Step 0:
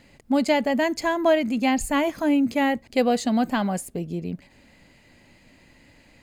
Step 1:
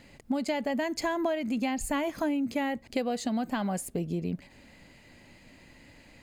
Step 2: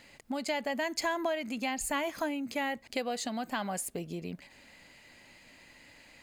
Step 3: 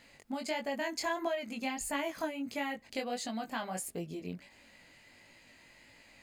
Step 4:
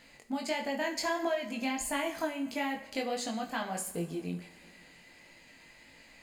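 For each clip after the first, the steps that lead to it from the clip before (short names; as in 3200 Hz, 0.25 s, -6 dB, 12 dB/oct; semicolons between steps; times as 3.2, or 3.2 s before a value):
compressor 12:1, threshold -26 dBFS, peak gain reduction 12 dB
low shelf 480 Hz -12 dB; gain +2 dB
chorus 1.5 Hz, delay 17.5 ms, depth 5.1 ms
two-slope reverb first 0.51 s, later 2.9 s, from -19 dB, DRR 5.5 dB; gain +1.5 dB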